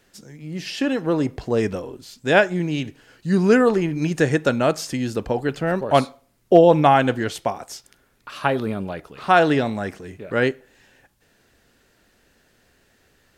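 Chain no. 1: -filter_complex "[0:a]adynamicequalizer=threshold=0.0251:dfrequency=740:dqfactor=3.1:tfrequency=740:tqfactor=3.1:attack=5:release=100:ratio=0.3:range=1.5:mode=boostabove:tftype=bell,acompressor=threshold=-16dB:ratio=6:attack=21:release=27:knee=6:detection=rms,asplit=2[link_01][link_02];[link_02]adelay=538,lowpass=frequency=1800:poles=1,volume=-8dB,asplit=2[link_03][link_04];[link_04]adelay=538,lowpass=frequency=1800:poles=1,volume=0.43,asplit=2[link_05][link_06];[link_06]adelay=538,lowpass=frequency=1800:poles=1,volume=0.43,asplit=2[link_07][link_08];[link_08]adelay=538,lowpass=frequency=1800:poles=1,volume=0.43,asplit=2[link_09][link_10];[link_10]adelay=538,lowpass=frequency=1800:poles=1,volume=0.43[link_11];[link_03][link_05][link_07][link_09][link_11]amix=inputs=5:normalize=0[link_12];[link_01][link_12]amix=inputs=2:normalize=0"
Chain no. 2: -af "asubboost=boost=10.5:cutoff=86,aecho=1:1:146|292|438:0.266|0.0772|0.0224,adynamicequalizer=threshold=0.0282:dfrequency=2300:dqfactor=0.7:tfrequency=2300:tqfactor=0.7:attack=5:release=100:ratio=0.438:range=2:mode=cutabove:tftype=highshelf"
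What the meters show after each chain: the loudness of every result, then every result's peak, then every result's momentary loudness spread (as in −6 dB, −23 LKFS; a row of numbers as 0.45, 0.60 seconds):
−22.5, −21.0 LKFS; −4.0, −2.5 dBFS; 14, 17 LU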